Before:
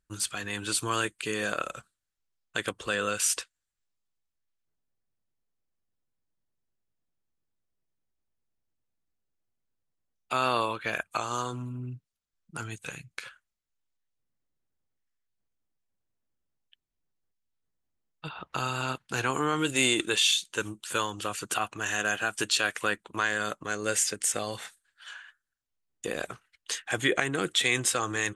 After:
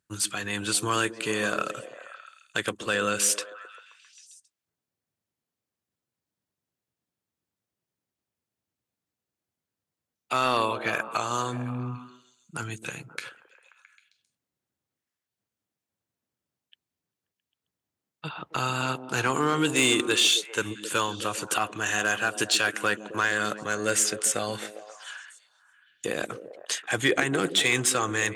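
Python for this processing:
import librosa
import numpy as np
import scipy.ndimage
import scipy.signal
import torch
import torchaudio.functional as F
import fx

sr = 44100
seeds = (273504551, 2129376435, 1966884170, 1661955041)

p1 = scipy.signal.sosfilt(scipy.signal.butter(4, 81.0, 'highpass', fs=sr, output='sos'), x)
p2 = fx.echo_stepped(p1, sr, ms=133, hz=250.0, octaves=0.7, feedback_pct=70, wet_db=-7.0)
p3 = 10.0 ** (-19.5 / 20.0) * (np.abs((p2 / 10.0 ** (-19.5 / 20.0) + 3.0) % 4.0 - 2.0) - 1.0)
y = p2 + (p3 * librosa.db_to_amplitude(-7.0))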